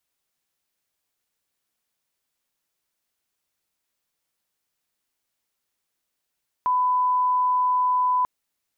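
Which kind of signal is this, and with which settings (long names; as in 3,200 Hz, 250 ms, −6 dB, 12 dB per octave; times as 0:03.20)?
line-up tone −18 dBFS 1.59 s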